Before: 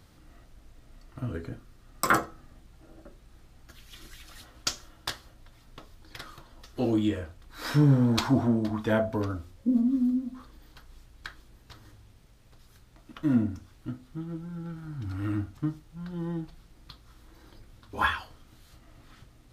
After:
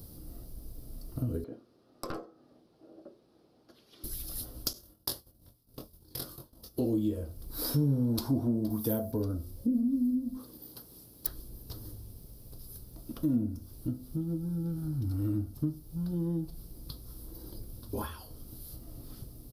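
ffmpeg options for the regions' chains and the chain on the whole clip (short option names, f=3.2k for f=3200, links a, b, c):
-filter_complex "[0:a]asettb=1/sr,asplit=3[a][b][c];[a]atrim=end=1.444[d];[b]atrim=start=1.44:end=4.04,asetpts=PTS-STARTPTS,afade=t=in:d=0.004:c=qsin,afade=t=out:st=2.596:d=0.004:c=qsin,highpass=360,lowpass=3k,aeval=exprs='(tanh(5.01*val(0)+0.55)-tanh(0.55))/5.01':c=same[e];[c]atrim=start=4.036[f];[d][e]acrossfade=d=0.004:c1=hsin:c2=qsin[g];[g][f]acrossfade=d=0.004:c1=qsin:c2=hsin,asettb=1/sr,asplit=3[h][i][j];[h]atrim=end=4.734[k];[i]atrim=start=4.73:end=6.81,asetpts=PTS-STARTPTS,afade=t=in:d=0.004:c=qsin,afade=t=out:st=2.076:d=0.004:c=qsin,agate=range=-33dB:threshold=-43dB:ratio=3:release=100:detection=peak,highpass=f=81:p=1,asplit=2[l][m];[m]adelay=23,volume=-3.5dB[n];[l][n]amix=inputs=2:normalize=0,atrim=end_sample=91728[o];[j]atrim=start=6.806[p];[k][o]acrossfade=d=0.004:c1=hsin:c2=qsin[q];[q][p]acrossfade=d=0.004:c1=qsin:c2=hsin,asettb=1/sr,asplit=3[r][s][t];[r]atrim=end=8.704[u];[s]atrim=start=8.7:end=9.12,asetpts=PTS-STARTPTS,afade=t=in:d=0.004:c=qsin,afade=t=out:st=0.416:d=0.004:c=qsin,highpass=60,aemphasis=mode=production:type=50fm[v];[t]atrim=start=9.116[w];[u][v]acrossfade=d=0.004:c1=hsin:c2=qsin[x];[x][w]acrossfade=d=0.004:c1=qsin:c2=hsin,asettb=1/sr,asplit=3[y][z][aa];[y]atrim=end=10.374[ab];[z]atrim=start=10.37:end=11.27,asetpts=PTS-STARTPTS,afade=t=in:d=0.004:c=qsin,afade=t=out:st=0.896:d=0.004:c=qsin,highpass=160,aeval=exprs='(mod(56.2*val(0)+1,2)-1)/56.2':c=same[ac];[aa]atrim=start=11.266[ad];[ab][ac]acrossfade=d=0.004:c1=hsin:c2=qsin[ae];[ae][ad]acrossfade=d=0.004:c1=qsin:c2=hsin,acompressor=threshold=-40dB:ratio=2.5,firequalizer=gain_entry='entry(440,0);entry(760,-9);entry(1900,-22);entry(4900,0);entry(7000,-10);entry(11000,13)':delay=0.05:min_phase=1,volume=8dB"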